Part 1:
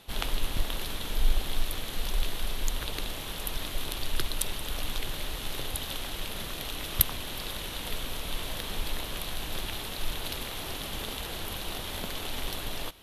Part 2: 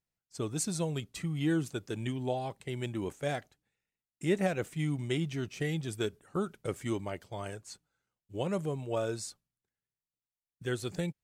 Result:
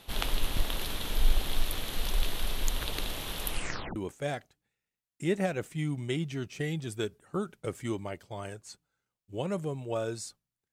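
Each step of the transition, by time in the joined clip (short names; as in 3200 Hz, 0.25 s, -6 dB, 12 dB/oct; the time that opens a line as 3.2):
part 1
3.48 tape stop 0.48 s
3.96 switch to part 2 from 2.97 s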